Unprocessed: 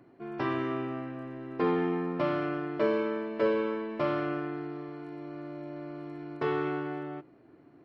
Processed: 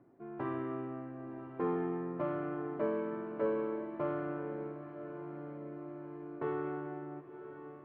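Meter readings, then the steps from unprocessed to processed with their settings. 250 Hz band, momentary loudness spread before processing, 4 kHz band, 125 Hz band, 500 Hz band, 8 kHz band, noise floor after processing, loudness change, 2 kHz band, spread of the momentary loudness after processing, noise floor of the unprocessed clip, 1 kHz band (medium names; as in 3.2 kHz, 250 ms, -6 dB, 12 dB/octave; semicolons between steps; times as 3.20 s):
-6.0 dB, 13 LU, under -15 dB, -5.5 dB, -5.5 dB, no reading, -50 dBFS, -6.5 dB, -10.5 dB, 11 LU, -58 dBFS, -7.0 dB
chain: low-pass 1.4 kHz 12 dB/octave; echo that smears into a reverb 1018 ms, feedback 52%, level -11.5 dB; trim -6 dB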